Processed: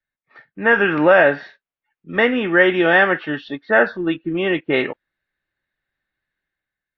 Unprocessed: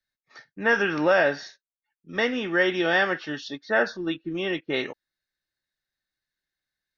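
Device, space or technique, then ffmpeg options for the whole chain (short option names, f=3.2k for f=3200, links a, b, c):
action camera in a waterproof case: -af "lowpass=f=2.9k:w=0.5412,lowpass=f=2.9k:w=1.3066,dynaudnorm=f=130:g=9:m=8dB,volume=1.5dB" -ar 24000 -c:a aac -b:a 96k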